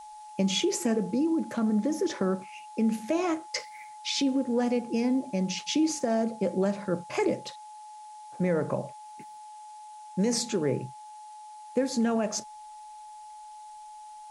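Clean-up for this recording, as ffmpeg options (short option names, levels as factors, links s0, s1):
-af "bandreject=f=850:w=30,afftdn=nr=28:nf=-46"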